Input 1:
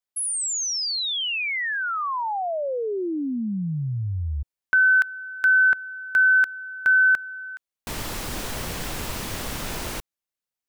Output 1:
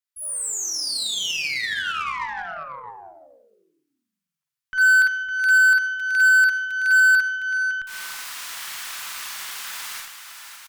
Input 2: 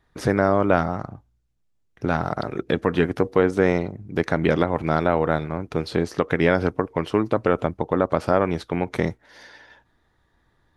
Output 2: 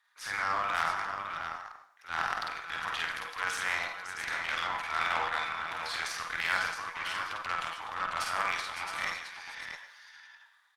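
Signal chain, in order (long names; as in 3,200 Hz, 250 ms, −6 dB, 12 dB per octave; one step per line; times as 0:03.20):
high-pass filter 1,100 Hz 24 dB per octave
in parallel at +0.5 dB: downward compressor 6 to 1, threshold −32 dBFS
on the sum: transient designer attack −8 dB, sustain +9 dB
hard clipping −11 dBFS
multi-tap delay 48/54/58/556/562/666 ms −4/−6/−13.5/−9.5/−13/−6.5 dB
dense smooth reverb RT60 0.51 s, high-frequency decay 0.95×, pre-delay 75 ms, DRR 9.5 dB
harmonic generator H 3 −19 dB, 4 −43 dB, 8 −31 dB, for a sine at −8.5 dBFS
level −4.5 dB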